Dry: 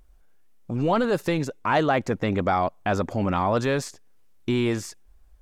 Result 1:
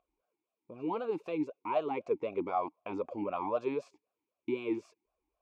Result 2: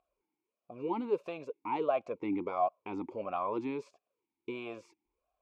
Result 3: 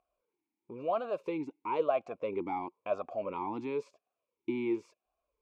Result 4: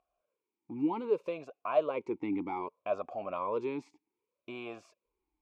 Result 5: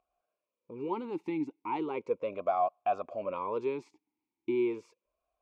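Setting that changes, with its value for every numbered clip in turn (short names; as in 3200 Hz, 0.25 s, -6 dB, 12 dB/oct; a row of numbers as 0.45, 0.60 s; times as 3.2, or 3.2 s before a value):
vowel sweep, rate: 3.9, 1.5, 0.98, 0.64, 0.36 Hz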